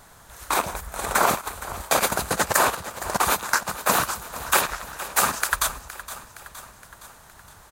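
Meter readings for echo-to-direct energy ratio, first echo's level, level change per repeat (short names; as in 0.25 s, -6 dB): -13.5 dB, -15.0 dB, -4.5 dB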